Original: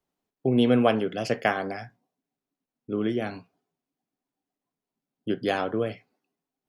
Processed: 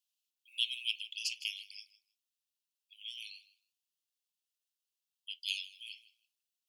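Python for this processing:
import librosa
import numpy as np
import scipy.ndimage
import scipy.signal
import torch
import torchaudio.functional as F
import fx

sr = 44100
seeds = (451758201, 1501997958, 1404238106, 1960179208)

p1 = scipy.signal.sosfilt(scipy.signal.butter(16, 2600.0, 'highpass', fs=sr, output='sos'), x)
p2 = p1 + fx.echo_feedback(p1, sr, ms=157, feedback_pct=15, wet_db=-18.0, dry=0)
y = F.gain(torch.from_numpy(p2), 3.0).numpy()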